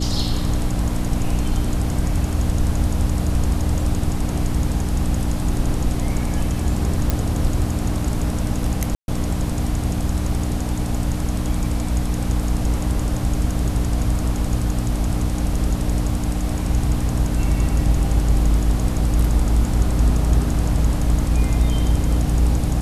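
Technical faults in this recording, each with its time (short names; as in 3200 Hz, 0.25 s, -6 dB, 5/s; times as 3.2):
hum 60 Hz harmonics 5 -24 dBFS
7.1 pop
8.95–9.08 gap 0.131 s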